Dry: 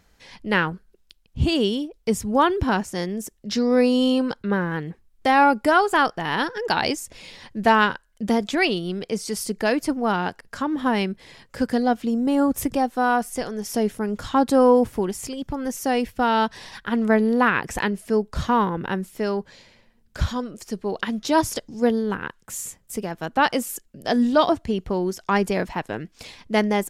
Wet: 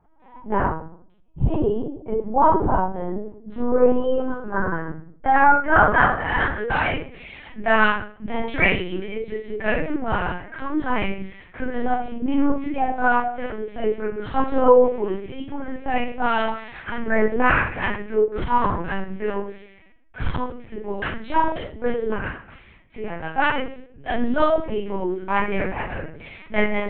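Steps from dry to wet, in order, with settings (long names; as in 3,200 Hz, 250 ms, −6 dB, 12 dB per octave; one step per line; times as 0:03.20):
low-pass filter sweep 930 Hz → 2,300 Hz, 0:03.13–0:06.92
convolution reverb RT60 0.55 s, pre-delay 5 ms, DRR −5.5 dB
linear-prediction vocoder at 8 kHz pitch kept
level −9.5 dB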